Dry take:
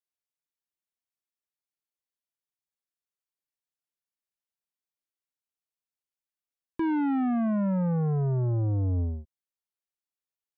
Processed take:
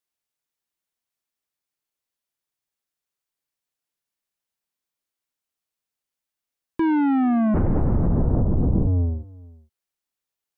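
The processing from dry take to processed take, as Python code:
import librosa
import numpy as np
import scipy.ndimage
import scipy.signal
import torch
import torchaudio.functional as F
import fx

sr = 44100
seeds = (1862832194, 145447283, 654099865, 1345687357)

p1 = x + fx.echo_single(x, sr, ms=442, db=-23.0, dry=0)
p2 = fx.lpc_vocoder(p1, sr, seeds[0], excitation='whisper', order=10, at=(7.54, 8.87))
y = F.gain(torch.from_numpy(p2), 6.5).numpy()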